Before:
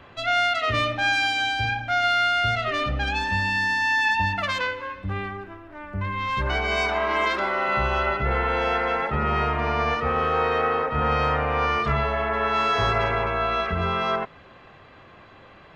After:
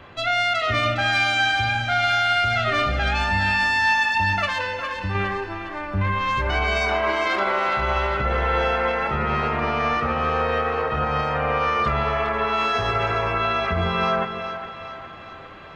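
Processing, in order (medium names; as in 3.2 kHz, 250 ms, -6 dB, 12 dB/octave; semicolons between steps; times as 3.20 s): gain riding within 4 dB 2 s; peak limiter -18 dBFS, peak gain reduction 7.5 dB; 4.45–5.15 s: compression 2.5:1, threshold -30 dBFS, peak gain reduction 5.5 dB; two-band feedback delay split 600 Hz, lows 154 ms, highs 409 ms, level -9 dB; on a send at -10.5 dB: reverberation, pre-delay 3 ms; on the sum: trim +3 dB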